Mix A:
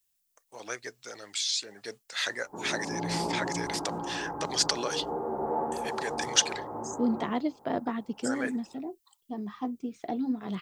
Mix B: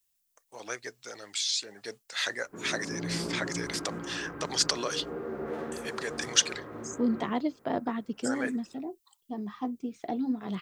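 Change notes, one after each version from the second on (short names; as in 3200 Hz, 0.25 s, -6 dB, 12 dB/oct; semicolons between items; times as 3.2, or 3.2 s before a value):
background: remove synth low-pass 860 Hz, resonance Q 8.8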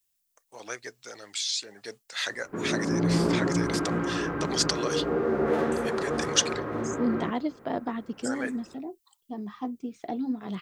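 background +10.5 dB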